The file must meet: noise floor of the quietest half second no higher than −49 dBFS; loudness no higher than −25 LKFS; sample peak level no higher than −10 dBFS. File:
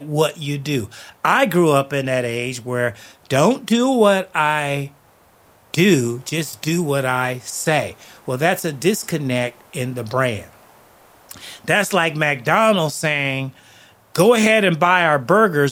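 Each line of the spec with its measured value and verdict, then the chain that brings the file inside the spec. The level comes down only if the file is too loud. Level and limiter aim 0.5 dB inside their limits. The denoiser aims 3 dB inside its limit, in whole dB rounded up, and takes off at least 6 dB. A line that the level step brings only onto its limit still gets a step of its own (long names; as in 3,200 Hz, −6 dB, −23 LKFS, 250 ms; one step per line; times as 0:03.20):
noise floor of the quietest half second −53 dBFS: in spec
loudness −18.0 LKFS: out of spec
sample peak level −2.0 dBFS: out of spec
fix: level −7.5 dB
brickwall limiter −10.5 dBFS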